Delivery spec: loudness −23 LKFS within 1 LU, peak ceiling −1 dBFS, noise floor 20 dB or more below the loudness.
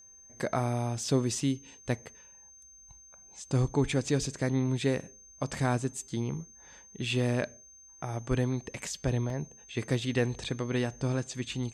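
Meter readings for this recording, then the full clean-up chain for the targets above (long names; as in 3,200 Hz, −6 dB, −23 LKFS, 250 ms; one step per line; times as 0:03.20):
number of dropouts 1; longest dropout 1.9 ms; interfering tone 6,300 Hz; level of the tone −52 dBFS; integrated loudness −31.5 LKFS; sample peak −15.5 dBFS; target loudness −23.0 LKFS
→ repair the gap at 0:09.30, 1.9 ms
notch filter 6,300 Hz, Q 30
level +8.5 dB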